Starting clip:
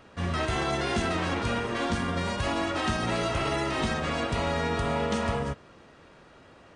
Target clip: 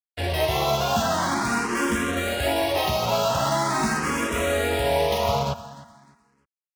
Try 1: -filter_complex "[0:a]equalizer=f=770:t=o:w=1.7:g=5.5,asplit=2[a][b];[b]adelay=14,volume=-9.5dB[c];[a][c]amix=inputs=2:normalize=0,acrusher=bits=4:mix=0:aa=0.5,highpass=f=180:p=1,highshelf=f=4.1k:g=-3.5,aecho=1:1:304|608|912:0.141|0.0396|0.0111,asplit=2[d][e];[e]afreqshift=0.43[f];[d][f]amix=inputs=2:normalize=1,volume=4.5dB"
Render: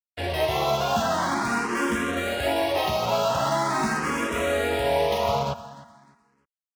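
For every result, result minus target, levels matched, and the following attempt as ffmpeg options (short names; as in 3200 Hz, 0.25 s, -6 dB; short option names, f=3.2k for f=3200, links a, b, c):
8000 Hz band -3.5 dB; 125 Hz band -3.0 dB
-filter_complex "[0:a]equalizer=f=770:t=o:w=1.7:g=5.5,asplit=2[a][b];[b]adelay=14,volume=-9.5dB[c];[a][c]amix=inputs=2:normalize=0,acrusher=bits=4:mix=0:aa=0.5,highpass=f=180:p=1,highshelf=f=4.1k:g=2.5,aecho=1:1:304|608|912:0.141|0.0396|0.0111,asplit=2[d][e];[e]afreqshift=0.43[f];[d][f]amix=inputs=2:normalize=1,volume=4.5dB"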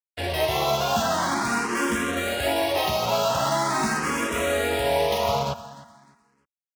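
125 Hz band -3.5 dB
-filter_complex "[0:a]equalizer=f=770:t=o:w=1.7:g=5.5,asplit=2[a][b];[b]adelay=14,volume=-9.5dB[c];[a][c]amix=inputs=2:normalize=0,acrusher=bits=4:mix=0:aa=0.5,highpass=f=71:p=1,highshelf=f=4.1k:g=2.5,aecho=1:1:304|608|912:0.141|0.0396|0.0111,asplit=2[d][e];[e]afreqshift=0.43[f];[d][f]amix=inputs=2:normalize=1,volume=4.5dB"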